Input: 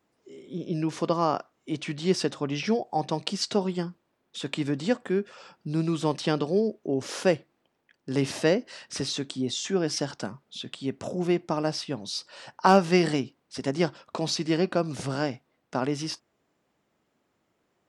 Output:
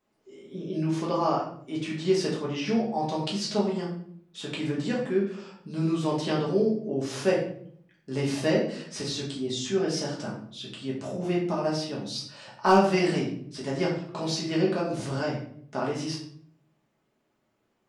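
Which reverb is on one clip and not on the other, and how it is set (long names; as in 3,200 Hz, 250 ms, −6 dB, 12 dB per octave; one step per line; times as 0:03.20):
rectangular room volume 88 cubic metres, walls mixed, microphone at 1.4 metres
level −7 dB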